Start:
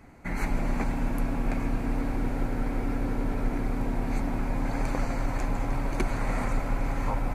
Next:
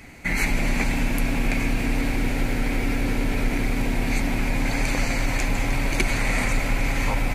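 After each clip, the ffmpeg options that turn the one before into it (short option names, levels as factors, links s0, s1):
-filter_complex "[0:a]highshelf=f=1700:t=q:w=1.5:g=9.5,asplit=2[s0][s1];[s1]alimiter=limit=0.0841:level=0:latency=1,volume=1[s2];[s0][s2]amix=inputs=2:normalize=0"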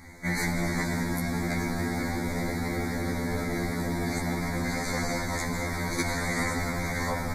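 -af "asuperstop=centerf=2800:order=8:qfactor=2,afftfilt=real='re*2*eq(mod(b,4),0)':imag='im*2*eq(mod(b,4),0)':win_size=2048:overlap=0.75"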